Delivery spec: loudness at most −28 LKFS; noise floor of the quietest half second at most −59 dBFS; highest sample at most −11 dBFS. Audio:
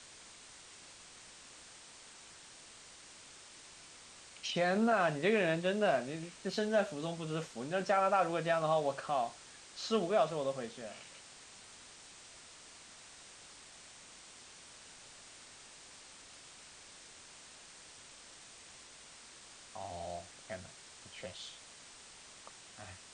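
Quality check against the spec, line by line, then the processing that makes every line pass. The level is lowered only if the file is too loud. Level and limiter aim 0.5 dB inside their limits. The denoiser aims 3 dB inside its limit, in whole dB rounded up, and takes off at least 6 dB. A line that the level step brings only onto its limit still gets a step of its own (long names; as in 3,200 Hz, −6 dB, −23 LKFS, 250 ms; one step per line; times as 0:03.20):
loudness −34.5 LKFS: in spec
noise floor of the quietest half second −55 dBFS: out of spec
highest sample −17.5 dBFS: in spec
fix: broadband denoise 7 dB, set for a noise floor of −55 dBFS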